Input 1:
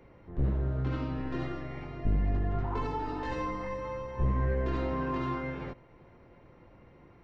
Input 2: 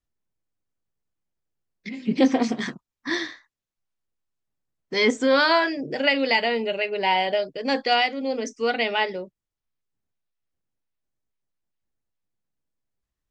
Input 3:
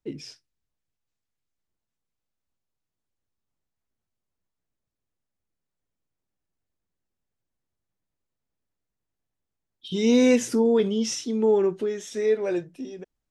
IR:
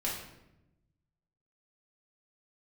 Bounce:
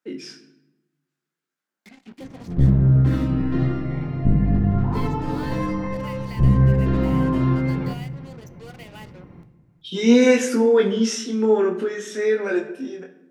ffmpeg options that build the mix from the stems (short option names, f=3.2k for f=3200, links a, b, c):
-filter_complex "[0:a]equalizer=f=160:w=0.93:g=15,adelay=2200,volume=1.5dB,asplit=3[a][b][c];[b]volume=-9dB[d];[c]volume=-16dB[e];[1:a]acompressor=threshold=-39dB:ratio=2,acrusher=bits=5:mix=0:aa=0.5,volume=-10.5dB,asplit=2[f][g];[g]volume=-20dB[h];[2:a]highpass=f=190:w=0.5412,highpass=f=190:w=1.3066,equalizer=f=1.5k:w=2:g=11.5,flanger=delay=19:depth=4.5:speed=0.57,volume=2.5dB,asplit=2[i][j];[j]volume=-8dB[k];[3:a]atrim=start_sample=2205[l];[d][h][k]amix=inputs=3:normalize=0[m];[m][l]afir=irnorm=-1:irlink=0[n];[e]aecho=0:1:382:1[o];[a][f][i][n][o]amix=inputs=5:normalize=0"